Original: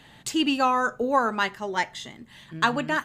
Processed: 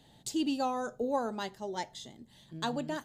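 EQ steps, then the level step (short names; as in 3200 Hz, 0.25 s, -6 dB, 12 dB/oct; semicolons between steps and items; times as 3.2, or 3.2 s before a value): band shelf 1700 Hz -11.5 dB; -6.5 dB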